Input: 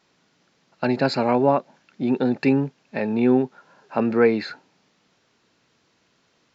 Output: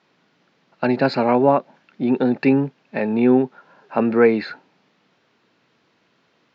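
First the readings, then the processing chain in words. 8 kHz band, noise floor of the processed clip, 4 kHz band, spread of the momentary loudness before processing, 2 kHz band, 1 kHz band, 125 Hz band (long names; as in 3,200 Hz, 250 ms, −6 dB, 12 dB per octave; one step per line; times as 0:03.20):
can't be measured, −64 dBFS, −1.5 dB, 10 LU, +2.5 dB, +3.0 dB, +1.0 dB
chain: band-pass filter 120–3,700 Hz
level +3 dB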